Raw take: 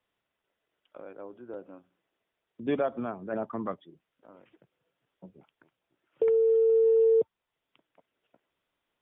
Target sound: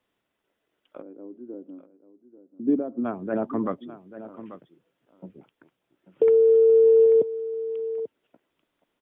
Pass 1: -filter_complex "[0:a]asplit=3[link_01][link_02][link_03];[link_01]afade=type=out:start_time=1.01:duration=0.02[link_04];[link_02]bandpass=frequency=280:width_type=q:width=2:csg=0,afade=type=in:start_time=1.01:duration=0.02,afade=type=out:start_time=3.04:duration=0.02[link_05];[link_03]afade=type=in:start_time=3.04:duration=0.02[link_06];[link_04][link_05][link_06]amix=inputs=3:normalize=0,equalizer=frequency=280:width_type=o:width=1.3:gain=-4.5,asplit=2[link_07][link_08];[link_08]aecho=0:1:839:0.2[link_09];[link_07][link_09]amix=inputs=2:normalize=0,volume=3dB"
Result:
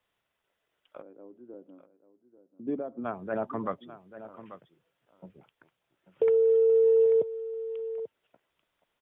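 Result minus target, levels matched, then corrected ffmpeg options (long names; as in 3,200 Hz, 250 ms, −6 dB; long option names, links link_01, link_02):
250 Hz band −5.0 dB
-filter_complex "[0:a]asplit=3[link_01][link_02][link_03];[link_01]afade=type=out:start_time=1.01:duration=0.02[link_04];[link_02]bandpass=frequency=280:width_type=q:width=2:csg=0,afade=type=in:start_time=1.01:duration=0.02,afade=type=out:start_time=3.04:duration=0.02[link_05];[link_03]afade=type=in:start_time=3.04:duration=0.02[link_06];[link_04][link_05][link_06]amix=inputs=3:normalize=0,equalizer=frequency=280:width_type=o:width=1.3:gain=6.5,asplit=2[link_07][link_08];[link_08]aecho=0:1:839:0.2[link_09];[link_07][link_09]amix=inputs=2:normalize=0,volume=3dB"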